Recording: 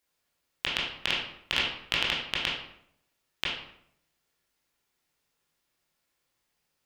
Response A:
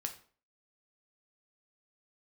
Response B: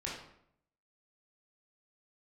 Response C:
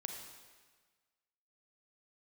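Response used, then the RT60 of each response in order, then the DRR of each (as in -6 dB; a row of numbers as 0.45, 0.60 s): B; 0.45, 0.70, 1.5 s; 4.5, -5.0, 3.0 dB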